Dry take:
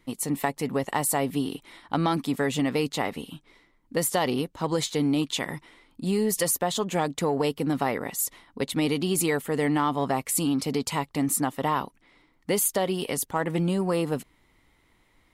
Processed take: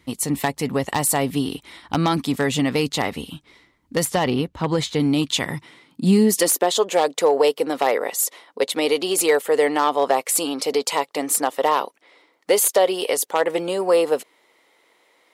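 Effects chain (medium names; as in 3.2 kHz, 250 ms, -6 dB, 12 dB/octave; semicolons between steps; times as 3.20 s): one-sided wavefolder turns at -17.5 dBFS; 4.05–5.00 s: tone controls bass +2 dB, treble -9 dB; high-pass sweep 63 Hz -> 490 Hz, 5.15–6.86 s; peaking EQ 4.7 kHz +4 dB 2.2 oct; trim +4 dB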